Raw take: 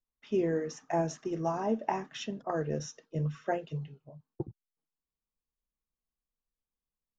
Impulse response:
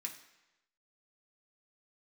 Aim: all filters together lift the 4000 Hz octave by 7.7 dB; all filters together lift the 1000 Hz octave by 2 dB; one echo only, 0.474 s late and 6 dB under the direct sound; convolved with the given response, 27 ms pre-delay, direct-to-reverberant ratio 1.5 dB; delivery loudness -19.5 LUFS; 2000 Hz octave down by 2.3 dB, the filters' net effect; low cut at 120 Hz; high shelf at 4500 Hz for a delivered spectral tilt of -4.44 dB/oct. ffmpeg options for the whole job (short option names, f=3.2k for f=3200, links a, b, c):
-filter_complex "[0:a]highpass=120,equalizer=f=1k:t=o:g=3.5,equalizer=f=2k:t=o:g=-8,equalizer=f=4k:t=o:g=8.5,highshelf=f=4.5k:g=8,aecho=1:1:474:0.501,asplit=2[a][b];[1:a]atrim=start_sample=2205,adelay=27[c];[b][c]afir=irnorm=-1:irlink=0,volume=1dB[d];[a][d]amix=inputs=2:normalize=0,volume=12dB"